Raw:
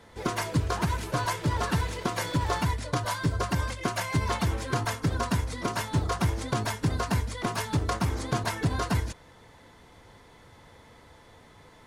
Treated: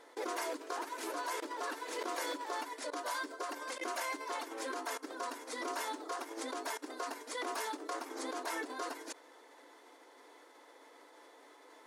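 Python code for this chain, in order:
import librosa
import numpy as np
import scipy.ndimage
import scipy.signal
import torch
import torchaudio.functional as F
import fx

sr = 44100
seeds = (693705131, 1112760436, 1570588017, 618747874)

y = fx.peak_eq(x, sr, hz=3000.0, db=-3.5, octaves=1.2)
y = fx.level_steps(y, sr, step_db=20)
y = fx.brickwall_highpass(y, sr, low_hz=260.0)
y = y * librosa.db_to_amplitude(3.5)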